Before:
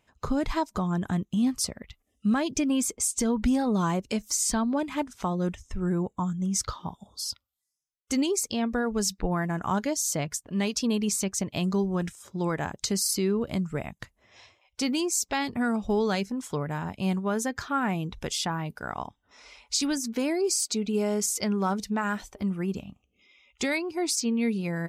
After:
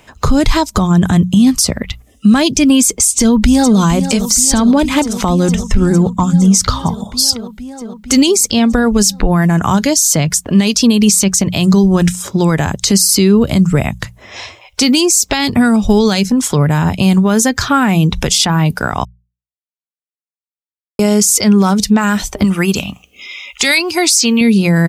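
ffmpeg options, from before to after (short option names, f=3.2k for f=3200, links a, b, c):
-filter_complex "[0:a]asplit=2[a][b];[b]afade=t=in:st=3.11:d=0.01,afade=t=out:st=3.79:d=0.01,aecho=0:1:460|920|1380|1840|2300|2760|3220|3680|4140|4600|5060|5520:0.211349|0.169079|0.135263|0.108211|0.0865685|0.0692548|0.0554038|0.0443231|0.0354585|0.0283668|0.0226934|0.0181547[c];[a][c]amix=inputs=2:normalize=0,asettb=1/sr,asplit=3[d][e][f];[d]atrim=end=22.444[g];[e]atrim=start=22.44:end=24.41,asetpts=PTS-STARTPTS,afade=t=in:d=0.004:c=qsin,afade=t=out:st=1.966:d=0.004:c=qsin,tiltshelf=f=690:g=-7[h];[f]atrim=start=24.406[i];[g][h]acrossfade=d=0.004:c1=hsin:c2=qsin[j];[j][i]acrossfade=d=0.004:c1=qsin:c2=hsin,asplit=3[k][l][m];[k]atrim=end=19.05,asetpts=PTS-STARTPTS,afade=t=out:st=19.046:d=0.004:c=hsin[n];[l]atrim=start=19.05:end=20.99,asetpts=PTS-STARTPTS,volume=0[o];[m]atrim=start=20.99,asetpts=PTS-STARTPTS,afade=t=in:d=0.004:c=hsin[p];[n][o][p]concat=n=3:v=0:a=1,acrossover=split=180|3000[q][r][s];[r]acompressor=threshold=-43dB:ratio=2[t];[q][t][s]amix=inputs=3:normalize=0,bandreject=f=60:t=h:w=6,bandreject=f=120:t=h:w=6,bandreject=f=180:t=h:w=6,alimiter=level_in=25.5dB:limit=-1dB:release=50:level=0:latency=1,volume=-1dB"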